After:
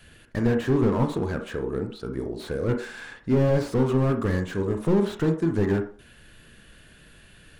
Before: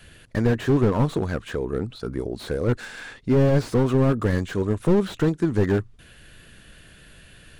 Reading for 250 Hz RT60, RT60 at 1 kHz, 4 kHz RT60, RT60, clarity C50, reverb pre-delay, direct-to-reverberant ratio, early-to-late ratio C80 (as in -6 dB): 0.40 s, 0.50 s, 0.50 s, 0.45 s, 9.0 dB, 28 ms, 5.0 dB, 14.5 dB